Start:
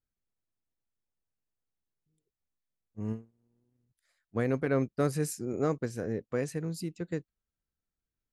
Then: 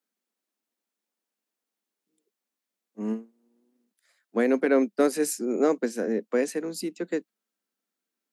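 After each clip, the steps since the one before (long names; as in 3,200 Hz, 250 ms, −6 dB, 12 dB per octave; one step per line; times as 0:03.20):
Butterworth high-pass 200 Hz 72 dB per octave
dynamic equaliser 1,200 Hz, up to −6 dB, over −55 dBFS, Q 5.3
level +7.5 dB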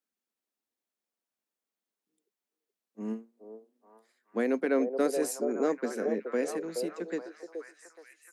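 echo through a band-pass that steps 424 ms, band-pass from 550 Hz, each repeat 0.7 octaves, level −3 dB
level −5.5 dB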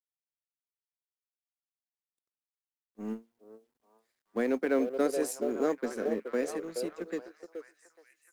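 mu-law and A-law mismatch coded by A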